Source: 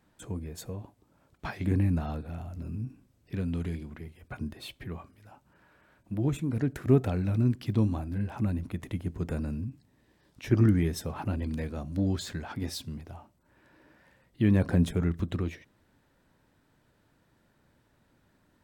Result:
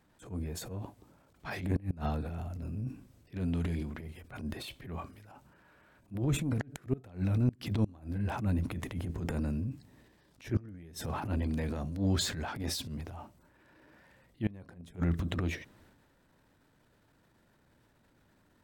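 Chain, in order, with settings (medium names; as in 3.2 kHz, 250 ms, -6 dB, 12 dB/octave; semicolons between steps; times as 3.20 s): transient shaper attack -12 dB, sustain +7 dB; inverted gate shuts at -18 dBFS, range -25 dB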